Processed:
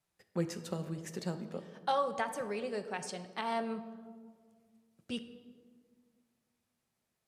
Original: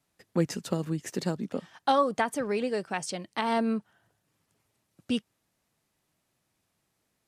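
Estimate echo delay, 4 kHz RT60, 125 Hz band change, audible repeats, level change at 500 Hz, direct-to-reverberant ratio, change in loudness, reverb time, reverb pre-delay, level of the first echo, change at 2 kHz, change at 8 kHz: none, 0.95 s, -7.0 dB, none, -7.0 dB, 8.5 dB, -7.5 dB, 1.8 s, 4 ms, none, -7.0 dB, -7.5 dB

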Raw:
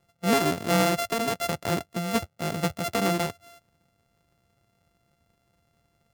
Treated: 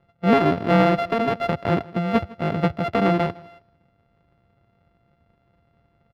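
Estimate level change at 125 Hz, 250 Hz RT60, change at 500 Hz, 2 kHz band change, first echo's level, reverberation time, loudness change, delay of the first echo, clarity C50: +7.0 dB, none, +6.0 dB, +2.5 dB, -22.0 dB, none, +5.0 dB, 0.158 s, none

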